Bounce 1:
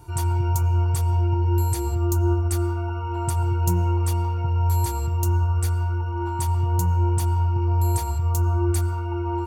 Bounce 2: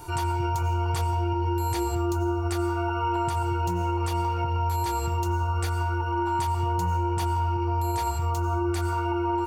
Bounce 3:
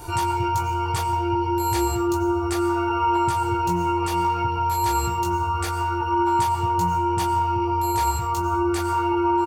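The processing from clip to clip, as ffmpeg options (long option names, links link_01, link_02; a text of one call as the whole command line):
ffmpeg -i in.wav -filter_complex "[0:a]acrossover=split=4800[link_01][link_02];[link_02]acompressor=threshold=-46dB:ratio=4:attack=1:release=60[link_03];[link_01][link_03]amix=inputs=2:normalize=0,equalizer=frequency=85:width=0.4:gain=-11.5,alimiter=level_in=3dB:limit=-24dB:level=0:latency=1:release=208,volume=-3dB,volume=9dB" out.wav
ffmpeg -i in.wav -filter_complex "[0:a]asplit=2[link_01][link_02];[link_02]adelay=18,volume=-2.5dB[link_03];[link_01][link_03]amix=inputs=2:normalize=0,volume=3.5dB" out.wav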